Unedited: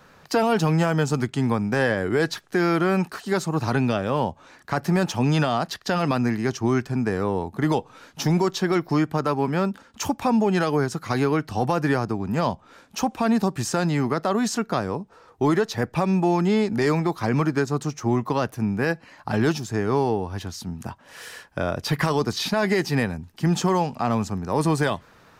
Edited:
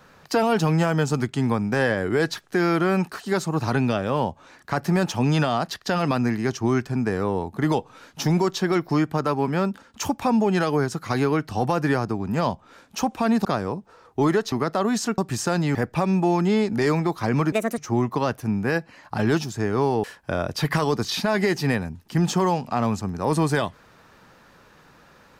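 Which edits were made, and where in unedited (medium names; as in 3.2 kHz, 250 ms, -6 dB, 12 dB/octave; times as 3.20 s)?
13.45–14.02 s: swap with 14.68–15.75 s
17.52–17.92 s: speed 155%
20.18–21.32 s: delete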